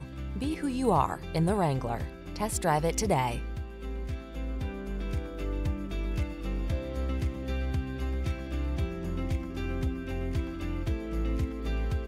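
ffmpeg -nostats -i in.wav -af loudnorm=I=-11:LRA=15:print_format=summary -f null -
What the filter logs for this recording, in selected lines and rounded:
Input Integrated:    -32.3 LUFS
Input True Peak:     -11.1 dBTP
Input LRA:             3.7 LU
Input Threshold:     -42.3 LUFS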